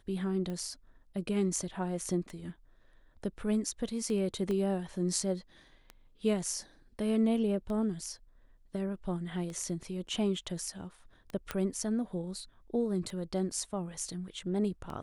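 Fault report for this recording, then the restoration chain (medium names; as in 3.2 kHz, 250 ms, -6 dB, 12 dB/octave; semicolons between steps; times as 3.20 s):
tick 33 1/3 rpm -28 dBFS
4.51 s: pop -24 dBFS
11.51 s: pop -18 dBFS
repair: de-click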